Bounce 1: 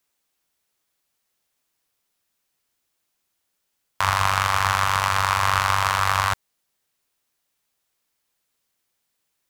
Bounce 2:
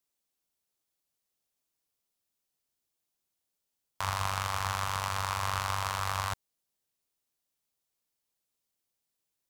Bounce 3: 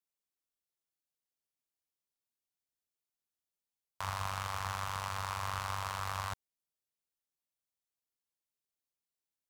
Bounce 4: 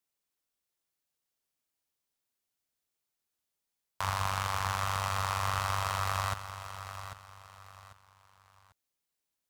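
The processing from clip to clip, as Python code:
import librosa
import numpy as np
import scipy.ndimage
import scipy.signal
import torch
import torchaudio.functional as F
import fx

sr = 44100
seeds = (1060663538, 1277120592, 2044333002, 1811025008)

y1 = fx.peak_eq(x, sr, hz=1700.0, db=-6.0, octaves=1.8)
y1 = y1 * 10.0 ** (-8.0 / 20.0)
y2 = fx.leveller(y1, sr, passes=1)
y2 = y2 * 10.0 ** (-8.5 / 20.0)
y3 = fx.echo_feedback(y2, sr, ms=795, feedback_pct=32, wet_db=-11.0)
y3 = y3 * 10.0 ** (5.5 / 20.0)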